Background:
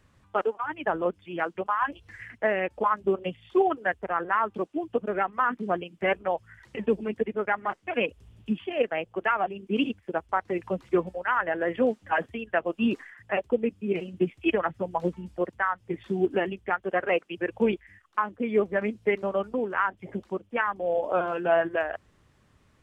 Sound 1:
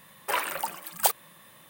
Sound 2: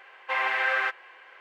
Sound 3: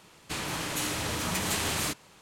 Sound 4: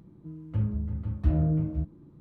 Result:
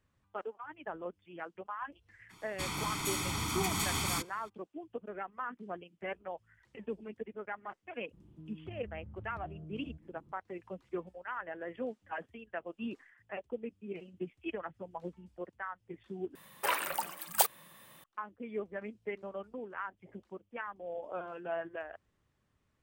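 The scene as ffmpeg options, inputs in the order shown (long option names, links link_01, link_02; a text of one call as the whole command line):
ffmpeg -i bed.wav -i cue0.wav -i cue1.wav -i cue2.wav -i cue3.wav -filter_complex "[0:a]volume=-14.5dB[link_01];[3:a]aecho=1:1:0.9:0.83[link_02];[4:a]acompressor=threshold=-38dB:ratio=6:attack=3.2:release=140:knee=1:detection=peak[link_03];[link_01]asplit=2[link_04][link_05];[link_04]atrim=end=16.354[link_06];[1:a]atrim=end=1.69,asetpts=PTS-STARTPTS,volume=-3.5dB[link_07];[link_05]atrim=start=18.036[link_08];[link_02]atrim=end=2.21,asetpts=PTS-STARTPTS,volume=-6dB,afade=type=in:duration=0.02,afade=type=out:start_time=2.19:duration=0.02,adelay=2290[link_09];[link_03]atrim=end=2.2,asetpts=PTS-STARTPTS,volume=-7.5dB,afade=type=in:duration=0.004:curve=hsin,afade=type=out:start_time=2.196:duration=0.004:curve=hsin,adelay=8130[link_10];[link_06][link_07]acrossfade=duration=0.004:curve1=hsin:curve2=hsin[link_11];[link_11][link_08]acrossfade=duration=0.004:curve1=hsin:curve2=hsin[link_12];[link_12][link_09][link_10]amix=inputs=3:normalize=0" out.wav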